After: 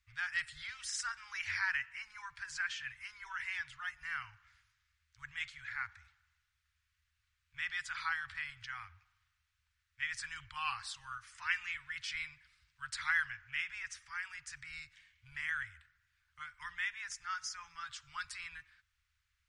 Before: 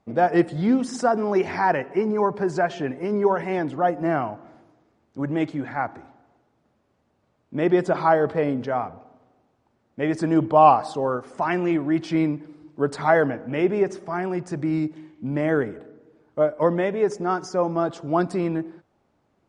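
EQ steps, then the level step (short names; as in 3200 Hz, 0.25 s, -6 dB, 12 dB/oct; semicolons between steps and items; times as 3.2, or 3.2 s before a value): inverse Chebyshev band-stop 190–650 Hz, stop band 60 dB; -1.5 dB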